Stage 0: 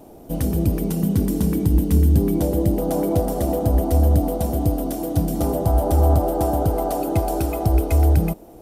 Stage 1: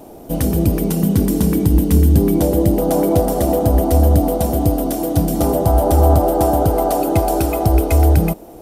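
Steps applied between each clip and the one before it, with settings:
low-shelf EQ 250 Hz −4 dB
level +7 dB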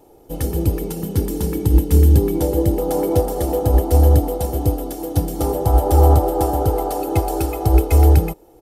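comb filter 2.3 ms, depth 56%
expander for the loud parts 1.5 to 1, over −28 dBFS
level −1 dB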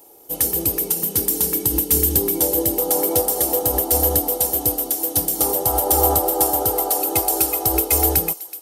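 RIAA equalisation recording
delay with a high-pass on its return 375 ms, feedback 56%, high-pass 2,300 Hz, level −16.5 dB

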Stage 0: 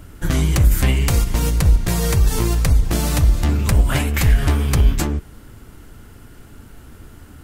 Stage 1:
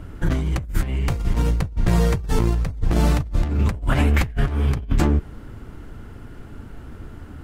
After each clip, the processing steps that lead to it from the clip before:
low-pass filter 1,700 Hz 6 dB per octave
compressor whose output falls as the input rises −19 dBFS, ratio −0.5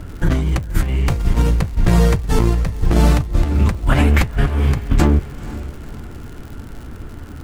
feedback delay with all-pass diffusion 503 ms, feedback 43%, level −16 dB
surface crackle 120 per second −35 dBFS
level +4.5 dB

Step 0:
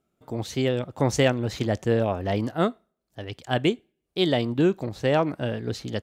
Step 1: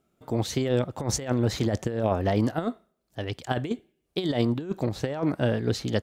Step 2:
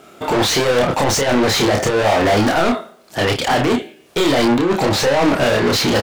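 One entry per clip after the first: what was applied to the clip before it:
dynamic equaliser 2,700 Hz, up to −5 dB, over −45 dBFS, Q 2.4; compressor whose output falls as the input rises −25 dBFS, ratio −0.5; level +1 dB
mid-hump overdrive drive 39 dB, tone 4,400 Hz, clips at −9.5 dBFS; double-tracking delay 29 ms −3.5 dB

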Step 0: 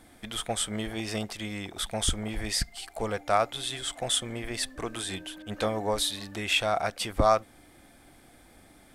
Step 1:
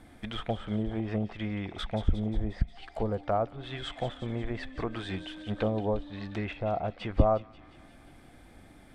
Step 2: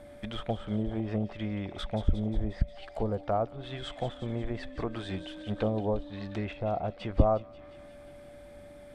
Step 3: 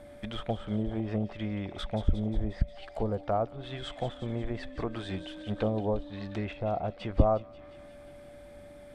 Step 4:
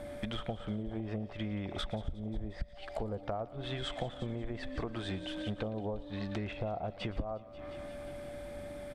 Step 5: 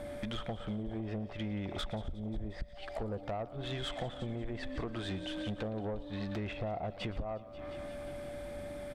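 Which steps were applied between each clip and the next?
bass and treble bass +5 dB, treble −8 dB; treble cut that deepens with the level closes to 670 Hz, closed at −25.5 dBFS; delay with a high-pass on its return 178 ms, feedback 64%, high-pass 2,800 Hz, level −8.5 dB
dynamic equaliser 2,000 Hz, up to −4 dB, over −48 dBFS, Q 0.85; steady tone 580 Hz −48 dBFS
no processing that can be heard
downward compressor 12 to 1, threshold −39 dBFS, peak gain reduction 23.5 dB; single-tap delay 115 ms −19 dB; level +5.5 dB
soft clipping −31.5 dBFS, distortion −16 dB; level +1.5 dB

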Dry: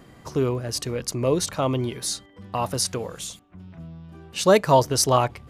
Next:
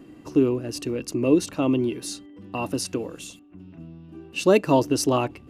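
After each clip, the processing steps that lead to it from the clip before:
hollow resonant body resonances 300/2,700 Hz, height 18 dB, ringing for 40 ms
level −6.5 dB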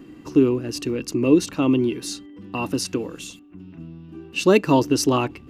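graphic EQ with 15 bands 100 Hz −3 dB, 630 Hz −7 dB, 10,000 Hz −5 dB
level +4 dB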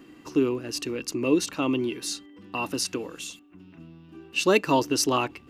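low-shelf EQ 410 Hz −10.5 dB

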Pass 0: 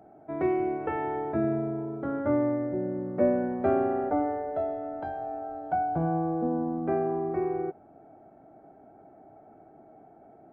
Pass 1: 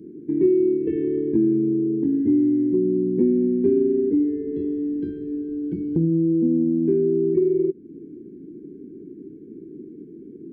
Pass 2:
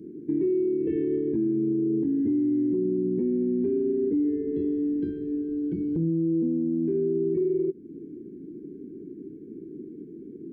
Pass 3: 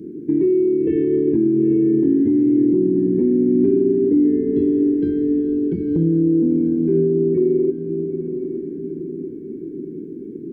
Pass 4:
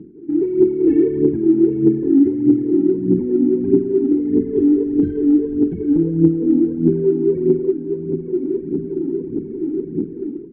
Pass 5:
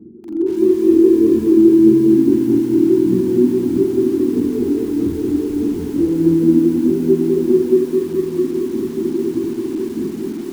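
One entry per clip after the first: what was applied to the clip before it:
drawn EQ curve 120 Hz 0 dB, 170 Hz +10 dB, 380 Hz +13 dB, 720 Hz −29 dB, 3,300 Hz −5 dB; brick-wall band-stop 510–1,500 Hz; downward compressor 2 to 1, threshold −31 dBFS, peak gain reduction 11.5 dB; level +7 dB
brickwall limiter −18 dBFS, peak gain reduction 9 dB; level −1 dB
feedback delay with all-pass diffusion 937 ms, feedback 45%, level −8.5 dB; level +8 dB
automatic gain control gain up to 13 dB; phase shifter 1.6 Hz, delay 3.8 ms, feedback 66%; high-frequency loss of the air 480 metres; level −7.5 dB
linear-phase brick-wall low-pass 1,500 Hz; convolution reverb, pre-delay 4 ms, DRR −7.5 dB; feedback echo at a low word length 218 ms, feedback 55%, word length 5 bits, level −4 dB; level −8 dB

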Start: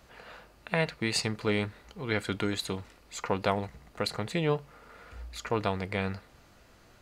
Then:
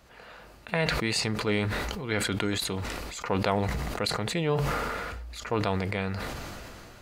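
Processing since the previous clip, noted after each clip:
level that may fall only so fast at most 21 dB per second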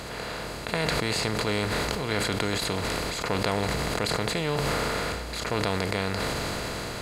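compressor on every frequency bin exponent 0.4
level −4.5 dB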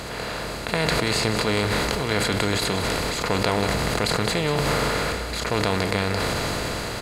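single-tap delay 184 ms −10 dB
level +4 dB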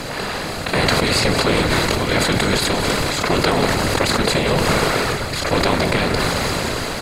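random phases in short frames
level +5.5 dB

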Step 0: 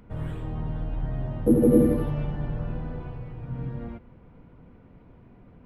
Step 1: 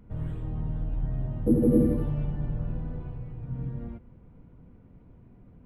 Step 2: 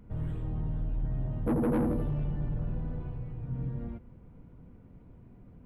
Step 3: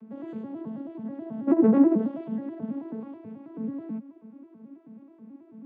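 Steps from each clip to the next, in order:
low-shelf EQ 370 Hz +9.5 dB; level −9 dB
soft clipping −24 dBFS, distortion −9 dB
vocoder with an arpeggio as carrier major triad, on A3, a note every 108 ms; level +7.5 dB

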